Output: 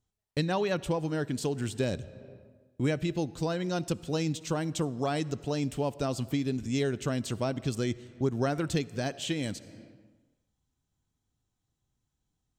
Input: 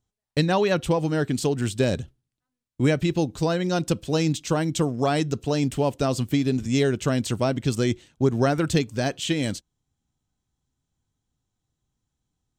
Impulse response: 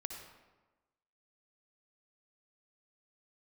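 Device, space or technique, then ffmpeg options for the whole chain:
ducked reverb: -filter_complex "[0:a]asplit=3[link_01][link_02][link_03];[1:a]atrim=start_sample=2205[link_04];[link_02][link_04]afir=irnorm=-1:irlink=0[link_05];[link_03]apad=whole_len=555050[link_06];[link_05][link_06]sidechaincompress=threshold=-37dB:ratio=8:attack=31:release=320,volume=3dB[link_07];[link_01][link_07]amix=inputs=2:normalize=0,volume=-8.5dB"

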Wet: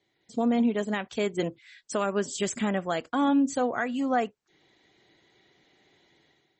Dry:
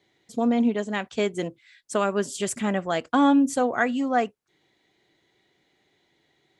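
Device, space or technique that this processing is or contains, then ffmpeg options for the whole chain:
low-bitrate web radio: -filter_complex "[0:a]asplit=3[link_01][link_02][link_03];[link_01]afade=type=out:start_time=2.15:duration=0.02[link_04];[link_02]adynamicequalizer=threshold=0.00158:dfrequency=110:dqfactor=4.8:tfrequency=110:tqfactor=4.8:attack=5:release=100:ratio=0.375:range=3:mode=cutabove:tftype=bell,afade=type=in:start_time=2.15:duration=0.02,afade=type=out:start_time=3.22:duration=0.02[link_05];[link_03]afade=type=in:start_time=3.22:duration=0.02[link_06];[link_04][link_05][link_06]amix=inputs=3:normalize=0,dynaudnorm=framelen=150:gausssize=5:maxgain=11dB,alimiter=limit=-9.5dB:level=0:latency=1:release=343,volume=-6.5dB" -ar 48000 -c:a libmp3lame -b:a 32k

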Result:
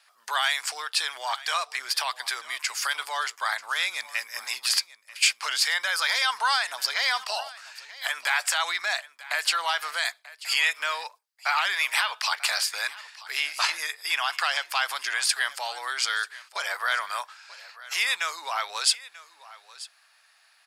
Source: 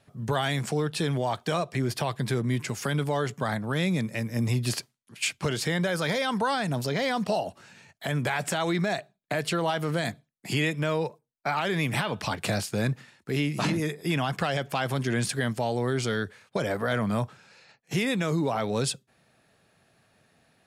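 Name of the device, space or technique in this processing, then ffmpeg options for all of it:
headphones lying on a table: -filter_complex "[0:a]asettb=1/sr,asplit=3[link_01][link_02][link_03];[link_01]atrim=end=11.834[link_04];[link_02]atrim=start=11.83:end=12.52,asetpts=PTS-STARTPTS,afade=type=in:duration=0.004:curve=qsin,afade=type=out:start_time=0.686:duration=0.004:curve=qsin,highpass=290[link_05];[link_03]atrim=start=12.516[link_06];[link_04][link_05]acrossfade=duration=0.004:curve1=hsin:curve2=qsin[link_07];[link_07][link_06]acrossfade=duration=0.004:curve1=qsin:curve2=hsin,highpass=frequency=1000:width=0.5412,highpass=frequency=1000:width=1.3066,equalizer=frequency=4800:width_type=o:width=0.22:gain=8,aecho=1:1:938:0.119,volume=6.5dB"

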